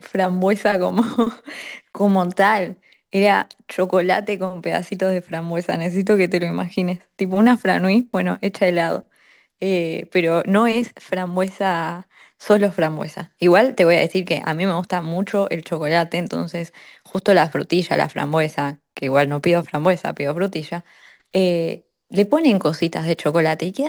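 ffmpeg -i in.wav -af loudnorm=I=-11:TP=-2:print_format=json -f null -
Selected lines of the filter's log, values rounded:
"input_i" : "-19.6",
"input_tp" : "-1.9",
"input_lra" : "2.4",
"input_thresh" : "-30.0",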